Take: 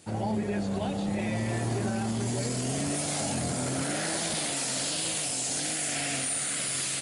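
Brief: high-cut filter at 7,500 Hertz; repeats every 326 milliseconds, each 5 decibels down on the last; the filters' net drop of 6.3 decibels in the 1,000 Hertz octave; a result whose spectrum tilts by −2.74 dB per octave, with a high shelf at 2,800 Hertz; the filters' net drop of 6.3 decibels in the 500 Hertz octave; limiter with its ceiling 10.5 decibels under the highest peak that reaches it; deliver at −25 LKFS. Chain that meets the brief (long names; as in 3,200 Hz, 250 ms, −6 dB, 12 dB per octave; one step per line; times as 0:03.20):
low-pass filter 7,500 Hz
parametric band 500 Hz −6.5 dB
parametric band 1,000 Hz −7.5 dB
high-shelf EQ 2,800 Hz +9 dB
brickwall limiter −25.5 dBFS
repeating echo 326 ms, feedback 56%, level −5 dB
level +6 dB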